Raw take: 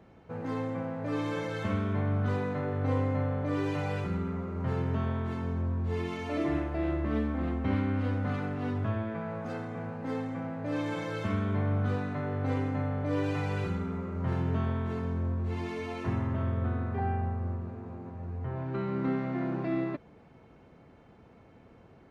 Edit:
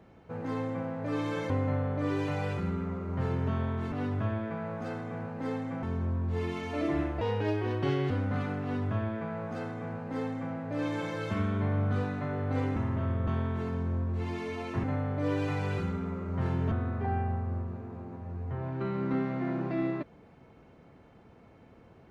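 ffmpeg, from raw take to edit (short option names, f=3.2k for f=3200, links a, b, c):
-filter_complex "[0:a]asplit=10[a][b][c][d][e][f][g][h][i][j];[a]atrim=end=1.502[k];[b]atrim=start=2.968:end=5.392[l];[c]atrim=start=8.558:end=10.472[m];[d]atrim=start=5.388:end=6.774[n];[e]atrim=start=6.77:end=8.04,asetpts=PTS-STARTPTS,asetrate=62622,aresample=44100[o];[f]atrim=start=8.036:end=12.702[p];[g]atrim=start=16.138:end=16.652[q];[h]atrim=start=14.578:end=16.142[r];[i]atrim=start=12.698:end=14.582[s];[j]atrim=start=16.648[t];[k][l]acrossfade=d=0.004:c1=hsin:c2=hsin[u];[u][m]acrossfade=d=0.004:c1=hsin:c2=hsin[v];[v][n]acrossfade=d=0.004:c1=hsin:c2=hsin[w];[w][o]acrossfade=d=0.004:c1=hsin:c2=hsin[x];[x][p]acrossfade=d=0.004:c1=hsin:c2=hsin[y];[y][q]acrossfade=d=0.004:c1=hsin:c2=hsin[z];[z][r]acrossfade=d=0.004:c1=hsin:c2=hsin[aa];[aa][s]acrossfade=d=0.004:c1=hsin:c2=hsin[ab];[ab][t]acrossfade=d=0.004:c1=hsin:c2=hsin"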